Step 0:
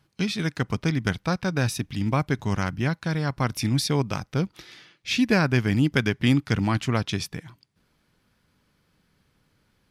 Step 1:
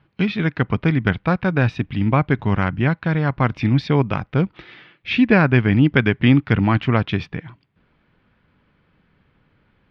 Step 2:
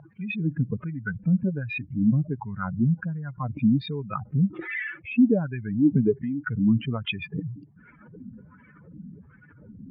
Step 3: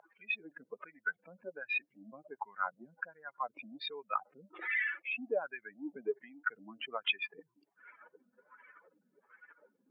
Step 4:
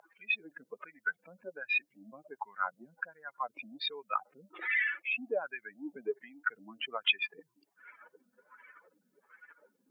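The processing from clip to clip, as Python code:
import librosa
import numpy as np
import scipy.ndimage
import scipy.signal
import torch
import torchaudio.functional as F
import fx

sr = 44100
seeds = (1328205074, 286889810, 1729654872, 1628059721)

y1 = scipy.signal.sosfilt(scipy.signal.butter(4, 3000.0, 'lowpass', fs=sr, output='sos'), x)
y1 = y1 * librosa.db_to_amplitude(6.5)
y2 = fx.spec_expand(y1, sr, power=3.1)
y2 = fx.wah_lfo(y2, sr, hz=1.3, low_hz=220.0, high_hz=2100.0, q=3.5)
y2 = fx.env_flatten(y2, sr, amount_pct=50)
y3 = scipy.signal.sosfilt(scipy.signal.butter(4, 550.0, 'highpass', fs=sr, output='sos'), y2)
y3 = y3 * librosa.db_to_amplitude(-1.5)
y4 = fx.high_shelf(y3, sr, hz=2600.0, db=8.5)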